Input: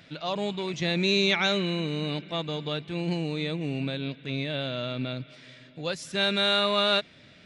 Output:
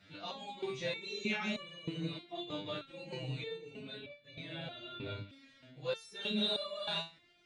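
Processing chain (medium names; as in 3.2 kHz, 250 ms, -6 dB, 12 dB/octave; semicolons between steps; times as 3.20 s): phase randomisation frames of 50 ms; resonator arpeggio 3.2 Hz 100–580 Hz; trim +1.5 dB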